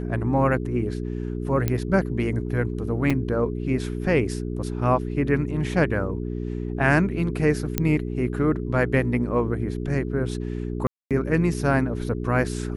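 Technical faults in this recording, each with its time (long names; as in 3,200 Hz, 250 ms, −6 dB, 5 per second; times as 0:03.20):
mains hum 60 Hz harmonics 7 −29 dBFS
0:01.68: click −10 dBFS
0:03.10: drop-out 5 ms
0:07.78: click −6 dBFS
0:10.87–0:11.11: drop-out 237 ms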